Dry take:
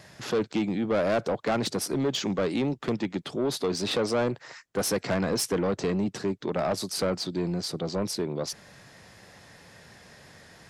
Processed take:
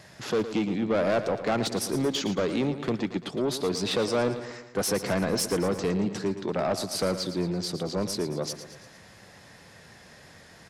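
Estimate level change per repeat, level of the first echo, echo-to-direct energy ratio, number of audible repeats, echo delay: −5.0 dB, −11.5 dB, −10.0 dB, 4, 113 ms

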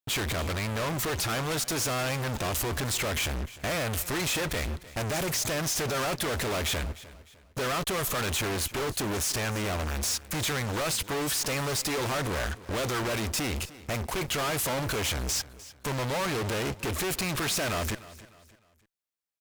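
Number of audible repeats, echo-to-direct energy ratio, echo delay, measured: 2, −17.5 dB, 303 ms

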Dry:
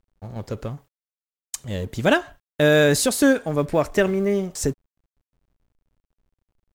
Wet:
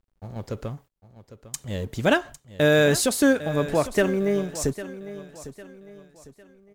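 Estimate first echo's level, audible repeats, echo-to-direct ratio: −14.5 dB, 3, −14.0 dB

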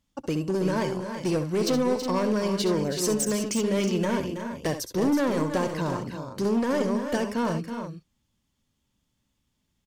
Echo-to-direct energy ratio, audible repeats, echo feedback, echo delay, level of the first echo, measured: −5.0 dB, 3, repeats not evenly spaced, 66 ms, −11.0 dB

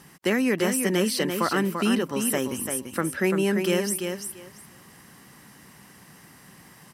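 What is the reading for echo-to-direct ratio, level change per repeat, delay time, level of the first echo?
−6.0 dB, −15.0 dB, 341 ms, −6.0 dB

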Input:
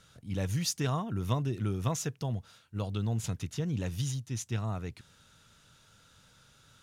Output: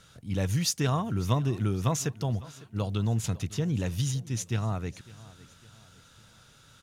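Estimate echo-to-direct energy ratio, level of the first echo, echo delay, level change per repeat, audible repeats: −19.0 dB, −20.0 dB, 554 ms, −7.0 dB, 3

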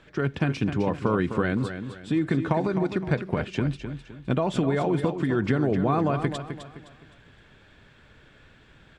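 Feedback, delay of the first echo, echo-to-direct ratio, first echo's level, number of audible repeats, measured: 35%, 258 ms, −8.5 dB, −9.0 dB, 3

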